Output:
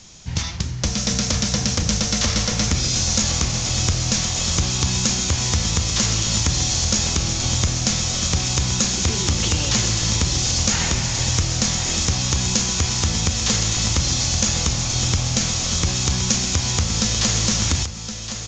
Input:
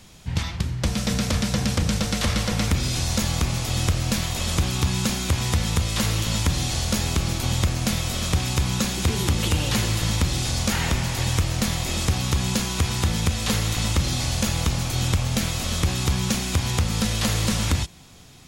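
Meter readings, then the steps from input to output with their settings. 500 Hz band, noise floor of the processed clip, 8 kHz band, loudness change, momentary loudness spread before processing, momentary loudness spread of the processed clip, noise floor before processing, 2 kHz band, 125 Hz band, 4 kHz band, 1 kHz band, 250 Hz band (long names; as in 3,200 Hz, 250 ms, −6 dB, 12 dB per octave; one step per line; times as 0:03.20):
+0.5 dB, −29 dBFS, +9.5 dB, +4.0 dB, 2 LU, 2 LU, −32 dBFS, +1.5 dB, +0.5 dB, +6.0 dB, +0.5 dB, +0.5 dB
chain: parametric band 6,200 Hz +11.5 dB 0.96 octaves
single-tap delay 1,068 ms −10 dB
mu-law 128 kbit/s 16,000 Hz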